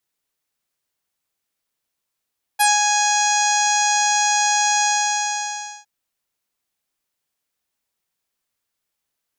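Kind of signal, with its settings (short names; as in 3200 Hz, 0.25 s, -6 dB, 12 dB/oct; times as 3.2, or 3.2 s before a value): synth note saw G#5 24 dB/oct, low-pass 6700 Hz, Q 6.6, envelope 1 oct, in 0.10 s, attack 20 ms, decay 0.17 s, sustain -4.5 dB, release 1.02 s, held 2.24 s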